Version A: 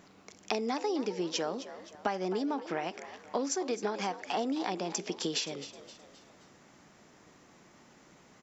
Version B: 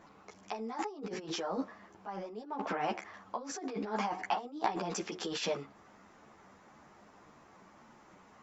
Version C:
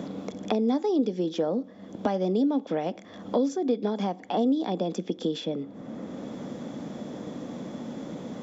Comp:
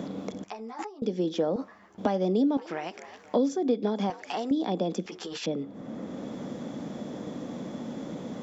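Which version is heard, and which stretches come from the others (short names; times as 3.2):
C
0.44–1.02 from B
1.56–1.98 from B
2.57–3.34 from A
4.1–4.51 from A
5.06–5.46 from B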